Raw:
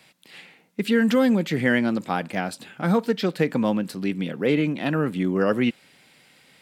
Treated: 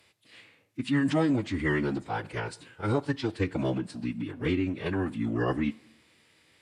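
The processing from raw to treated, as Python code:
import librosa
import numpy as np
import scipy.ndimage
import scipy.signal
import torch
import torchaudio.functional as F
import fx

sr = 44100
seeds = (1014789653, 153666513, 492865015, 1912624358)

y = fx.pitch_keep_formants(x, sr, semitones=-8.5)
y = fx.rev_double_slope(y, sr, seeds[0], early_s=0.74, late_s=1.9, knee_db=-17, drr_db=19.0)
y = y * 10.0 ** (-6.0 / 20.0)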